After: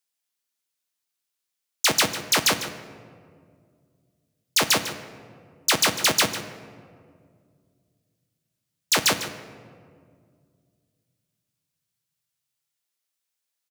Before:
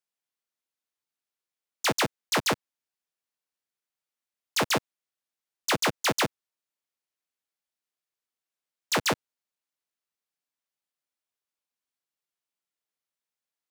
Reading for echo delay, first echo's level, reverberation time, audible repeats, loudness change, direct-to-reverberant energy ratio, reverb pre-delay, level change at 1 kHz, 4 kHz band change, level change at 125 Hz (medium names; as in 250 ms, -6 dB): 150 ms, -13.5 dB, 2.1 s, 1, +5.5 dB, 8.0 dB, 3 ms, +2.0 dB, +7.5 dB, +1.0 dB